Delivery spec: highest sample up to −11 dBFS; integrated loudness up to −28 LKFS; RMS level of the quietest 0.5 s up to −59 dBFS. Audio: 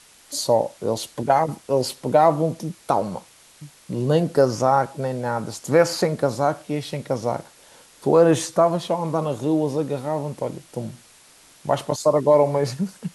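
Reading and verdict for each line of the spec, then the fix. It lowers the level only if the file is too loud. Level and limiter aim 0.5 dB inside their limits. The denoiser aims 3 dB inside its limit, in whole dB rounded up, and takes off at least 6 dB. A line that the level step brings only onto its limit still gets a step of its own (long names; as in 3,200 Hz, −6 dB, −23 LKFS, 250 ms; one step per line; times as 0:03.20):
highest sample −4.5 dBFS: out of spec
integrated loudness −22.0 LKFS: out of spec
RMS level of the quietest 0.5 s −51 dBFS: out of spec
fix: broadband denoise 6 dB, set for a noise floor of −51 dBFS
level −6.5 dB
brickwall limiter −11.5 dBFS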